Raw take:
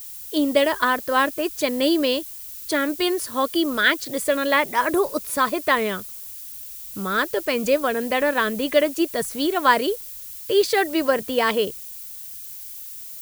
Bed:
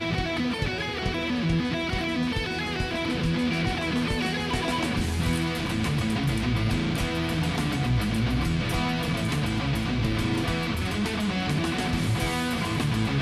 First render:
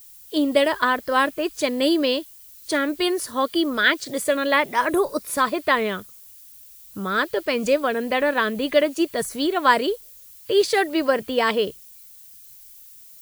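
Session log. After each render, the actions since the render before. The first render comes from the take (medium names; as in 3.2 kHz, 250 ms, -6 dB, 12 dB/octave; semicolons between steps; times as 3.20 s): noise print and reduce 9 dB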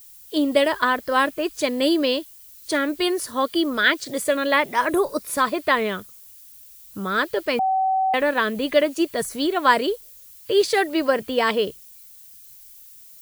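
7.59–8.14 s: bleep 762 Hz -17.5 dBFS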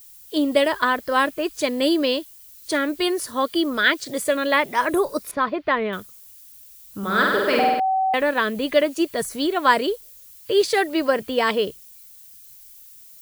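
5.31–5.93 s: distance through air 290 m; 6.98–7.80 s: flutter echo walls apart 8.5 m, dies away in 1.3 s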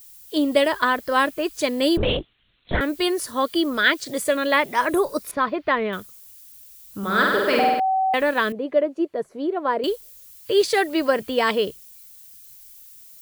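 1.97–2.81 s: LPC vocoder at 8 kHz whisper; 8.52–9.84 s: band-pass filter 460 Hz, Q 1.1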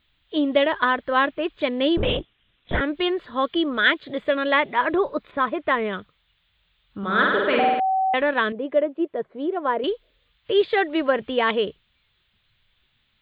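elliptic low-pass 3.6 kHz, stop band 40 dB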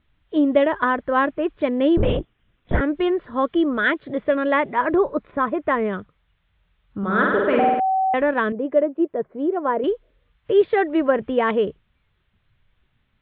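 low-pass 1.9 kHz 12 dB/octave; bass shelf 440 Hz +6 dB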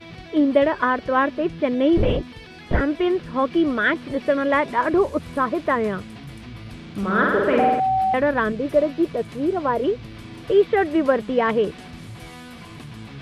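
add bed -12.5 dB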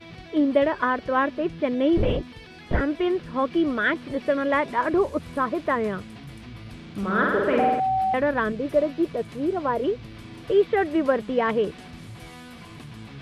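trim -3 dB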